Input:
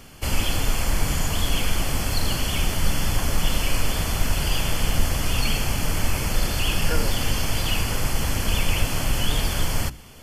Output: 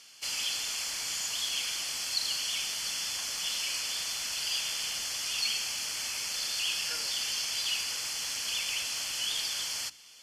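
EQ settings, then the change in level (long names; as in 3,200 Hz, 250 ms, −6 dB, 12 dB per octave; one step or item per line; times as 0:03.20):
resonant band-pass 5,100 Hz, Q 1.4
+2.0 dB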